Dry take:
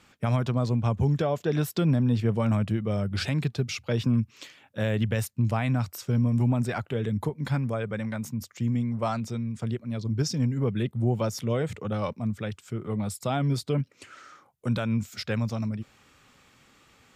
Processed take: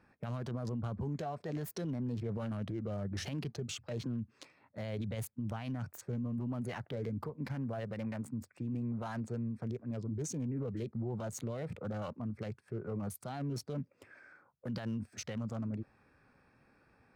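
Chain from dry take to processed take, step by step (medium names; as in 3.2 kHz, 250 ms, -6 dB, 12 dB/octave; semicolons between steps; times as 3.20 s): local Wiener filter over 15 samples; formant shift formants +3 st; peak limiter -25.5 dBFS, peak gain reduction 11 dB; trim -5 dB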